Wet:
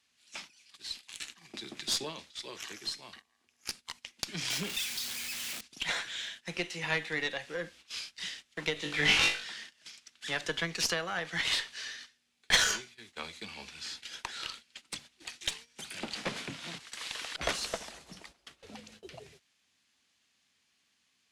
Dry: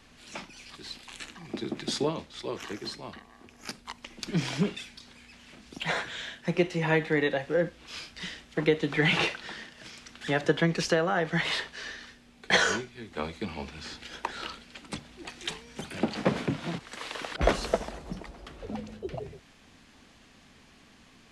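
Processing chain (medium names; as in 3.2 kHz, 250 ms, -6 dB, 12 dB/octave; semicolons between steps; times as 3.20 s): 4.50–5.61 s: jump at every zero crossing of -33.5 dBFS; high-pass 66 Hz 12 dB/octave; gate -45 dBFS, range -14 dB; tilt shelf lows -9.5 dB, about 1.5 kHz; valve stage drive 13 dB, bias 0.8; 8.74–9.44 s: flutter echo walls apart 3.5 m, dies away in 0.34 s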